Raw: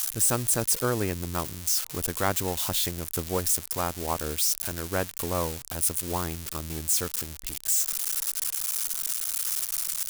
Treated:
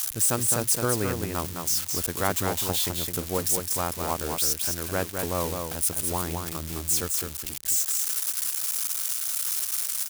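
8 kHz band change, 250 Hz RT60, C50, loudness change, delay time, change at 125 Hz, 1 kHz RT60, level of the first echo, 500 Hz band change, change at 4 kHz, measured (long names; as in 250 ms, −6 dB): +1.0 dB, no reverb audible, no reverb audible, +1.0 dB, 211 ms, +0.5 dB, no reverb audible, −5.0 dB, +1.0 dB, +1.0 dB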